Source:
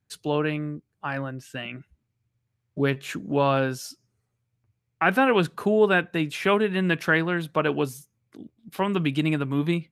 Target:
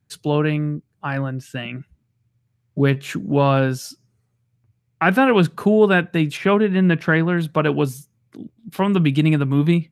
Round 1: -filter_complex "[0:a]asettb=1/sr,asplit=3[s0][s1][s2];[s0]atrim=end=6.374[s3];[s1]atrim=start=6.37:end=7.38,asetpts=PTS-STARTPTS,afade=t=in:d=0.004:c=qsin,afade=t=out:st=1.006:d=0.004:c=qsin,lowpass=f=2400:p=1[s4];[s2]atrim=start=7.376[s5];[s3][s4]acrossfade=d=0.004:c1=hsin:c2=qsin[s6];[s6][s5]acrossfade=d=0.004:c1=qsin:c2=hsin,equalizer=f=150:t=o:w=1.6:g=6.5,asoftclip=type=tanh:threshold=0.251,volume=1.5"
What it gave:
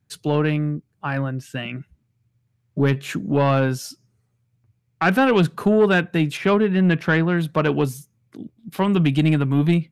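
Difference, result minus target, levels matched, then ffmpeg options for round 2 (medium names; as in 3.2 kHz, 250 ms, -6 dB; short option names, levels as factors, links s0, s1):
saturation: distortion +21 dB
-filter_complex "[0:a]asettb=1/sr,asplit=3[s0][s1][s2];[s0]atrim=end=6.374[s3];[s1]atrim=start=6.37:end=7.38,asetpts=PTS-STARTPTS,afade=t=in:d=0.004:c=qsin,afade=t=out:st=1.006:d=0.004:c=qsin,lowpass=f=2400:p=1[s4];[s2]atrim=start=7.376[s5];[s3][s4]acrossfade=d=0.004:c1=hsin:c2=qsin[s6];[s6][s5]acrossfade=d=0.004:c1=qsin:c2=hsin,equalizer=f=150:t=o:w=1.6:g=6.5,asoftclip=type=tanh:threshold=1,volume=1.5"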